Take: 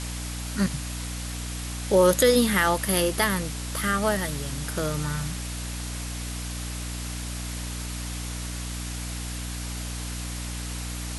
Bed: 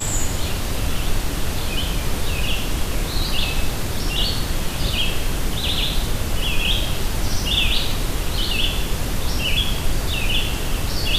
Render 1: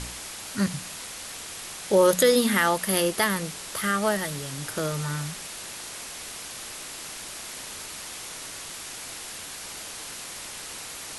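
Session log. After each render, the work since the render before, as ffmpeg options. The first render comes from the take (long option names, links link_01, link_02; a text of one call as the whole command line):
ffmpeg -i in.wav -af "bandreject=frequency=60:width_type=h:width=4,bandreject=frequency=120:width_type=h:width=4,bandreject=frequency=180:width_type=h:width=4,bandreject=frequency=240:width_type=h:width=4,bandreject=frequency=300:width_type=h:width=4" out.wav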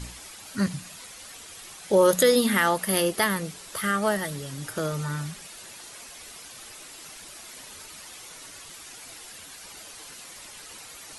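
ffmpeg -i in.wav -af "afftdn=noise_reduction=9:noise_floor=-39" out.wav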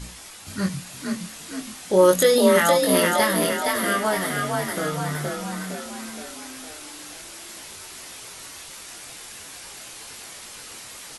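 ffmpeg -i in.wav -filter_complex "[0:a]asplit=2[link_01][link_02];[link_02]adelay=22,volume=-4dB[link_03];[link_01][link_03]amix=inputs=2:normalize=0,asplit=8[link_04][link_05][link_06][link_07][link_08][link_09][link_10][link_11];[link_05]adelay=465,afreqshift=37,volume=-3dB[link_12];[link_06]adelay=930,afreqshift=74,volume=-8.5dB[link_13];[link_07]adelay=1395,afreqshift=111,volume=-14dB[link_14];[link_08]adelay=1860,afreqshift=148,volume=-19.5dB[link_15];[link_09]adelay=2325,afreqshift=185,volume=-25.1dB[link_16];[link_10]adelay=2790,afreqshift=222,volume=-30.6dB[link_17];[link_11]adelay=3255,afreqshift=259,volume=-36.1dB[link_18];[link_04][link_12][link_13][link_14][link_15][link_16][link_17][link_18]amix=inputs=8:normalize=0" out.wav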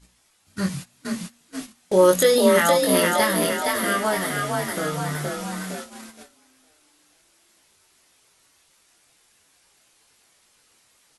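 ffmpeg -i in.wav -af "agate=range=-21dB:threshold=-33dB:ratio=16:detection=peak,bandreject=frequency=118.7:width_type=h:width=4,bandreject=frequency=237.4:width_type=h:width=4" out.wav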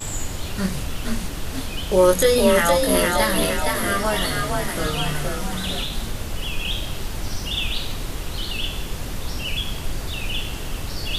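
ffmpeg -i in.wav -i bed.wav -filter_complex "[1:a]volume=-6dB[link_01];[0:a][link_01]amix=inputs=2:normalize=0" out.wav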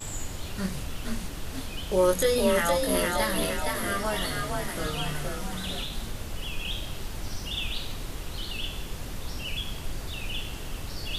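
ffmpeg -i in.wav -af "volume=-7dB" out.wav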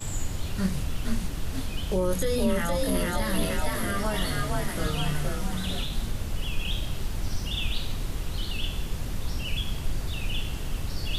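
ffmpeg -i in.wav -filter_complex "[0:a]acrossover=split=230[link_01][link_02];[link_01]acontrast=46[link_03];[link_02]alimiter=limit=-22dB:level=0:latency=1:release=15[link_04];[link_03][link_04]amix=inputs=2:normalize=0" out.wav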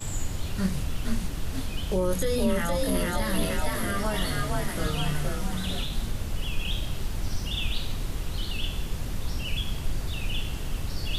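ffmpeg -i in.wav -af anull out.wav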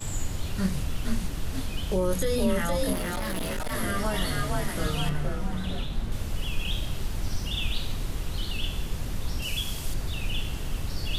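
ffmpeg -i in.wav -filter_complex "[0:a]asettb=1/sr,asplit=3[link_01][link_02][link_03];[link_01]atrim=end=2.934[link_04];[link_02]atrim=start=2.93:end=3.72,asetpts=PTS-STARTPTS,afade=type=in:duration=0.004:curve=qsin,afade=type=out:start_time=0.786:duration=0.004:curve=qsin,volume=27dB,asoftclip=hard,volume=-27dB[link_05];[link_03]atrim=start=3.716[link_06];[link_04][link_05]acrossfade=duration=0.004:curve1=hsin:curve2=qsin[link_07];[link_07][link_06]acrossfade=duration=0.004:curve1=qsin:curve2=hsin,asettb=1/sr,asplit=3[link_08][link_09][link_10];[link_08]atrim=end=5.094[link_11];[link_09]atrim=start=5.09:end=6.12,asetpts=PTS-STARTPTS,afade=type=in:duration=0.004:curve=qsin,afade=type=out:start_time=1.026:duration=0.004:curve=qsin,highshelf=frequency=3100:gain=-11[link_12];[link_10]atrim=start=6.116[link_13];[link_11][link_12]acrossfade=duration=0.004:curve1=hsin:curve2=qsin[link_14];[link_14][link_13]acrossfade=duration=0.004:curve1=qsin:curve2=hsin,asettb=1/sr,asplit=3[link_15][link_16][link_17];[link_15]atrim=end=9.424[link_18];[link_16]atrim=start=9.42:end=9.94,asetpts=PTS-STARTPTS,afade=type=in:duration=0.004:curve=qsin,afade=type=out:start_time=0.516:duration=0.004:curve=qsin,bass=frequency=250:gain=-3,treble=frequency=4000:gain=8[link_19];[link_17]atrim=start=9.936[link_20];[link_18][link_19]acrossfade=duration=0.004:curve1=hsin:curve2=qsin[link_21];[link_21][link_20]acrossfade=duration=0.004:curve1=qsin:curve2=hsin" out.wav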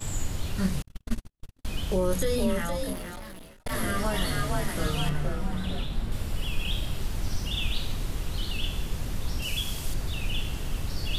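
ffmpeg -i in.wav -filter_complex "[0:a]asettb=1/sr,asplit=3[link_01][link_02][link_03];[link_01]atrim=end=0.824[link_04];[link_02]atrim=start=0.82:end=1.65,asetpts=PTS-STARTPTS,afade=type=in:duration=0.004:curve=qsin,afade=type=out:start_time=0.826:duration=0.004:curve=qsin,agate=range=-59dB:threshold=-23dB:ratio=16:release=100:detection=peak[link_05];[link_03]atrim=start=1.646[link_06];[link_04][link_05]acrossfade=duration=0.004:curve1=hsin:curve2=qsin[link_07];[link_07][link_06]acrossfade=duration=0.004:curve1=qsin:curve2=hsin,asettb=1/sr,asplit=3[link_08][link_09][link_10];[link_08]atrim=end=5.324[link_11];[link_09]atrim=start=5.32:end=7.01,asetpts=PTS-STARTPTS,afade=type=in:duration=0.004:curve=qsin,afade=type=out:start_time=1.686:duration=0.004:curve=qsin,bandreject=frequency=6300:width=12[link_12];[link_10]atrim=start=7.006[link_13];[link_11][link_12]acrossfade=duration=0.004:curve1=hsin:curve2=qsin[link_14];[link_14][link_13]acrossfade=duration=0.004:curve1=qsin:curve2=hsin,asplit=2[link_15][link_16];[link_15]atrim=end=3.66,asetpts=PTS-STARTPTS,afade=type=out:start_time=2.26:duration=1.4[link_17];[link_16]atrim=start=3.66,asetpts=PTS-STARTPTS,afade=type=in:duration=0.004:curve=hsin[link_18];[link_17][link_18]concat=n=2:v=0:a=1" out.wav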